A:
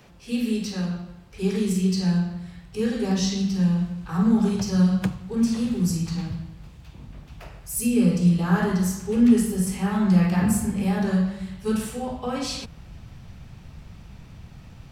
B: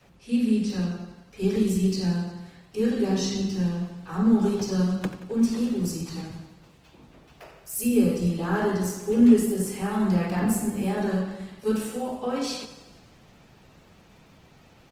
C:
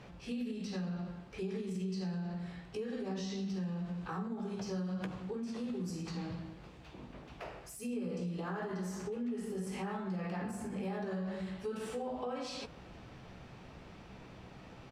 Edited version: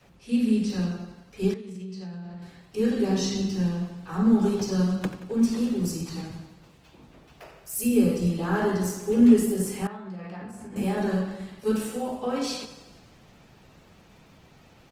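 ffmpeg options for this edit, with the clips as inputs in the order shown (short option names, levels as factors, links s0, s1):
-filter_complex "[2:a]asplit=2[s0][s1];[1:a]asplit=3[s2][s3][s4];[s2]atrim=end=1.542[s5];[s0]atrim=start=1.538:end=2.422[s6];[s3]atrim=start=2.418:end=9.872[s7];[s1]atrim=start=9.868:end=10.762[s8];[s4]atrim=start=10.758[s9];[s5][s6]acrossfade=d=0.004:c1=hsin:c2=hsin[s10];[s10][s7]acrossfade=d=0.004:c1=hsin:c2=hsin[s11];[s11][s8]acrossfade=d=0.004:c1=hsin:c2=hsin[s12];[s12][s9]acrossfade=d=0.004:c1=hsin:c2=hsin"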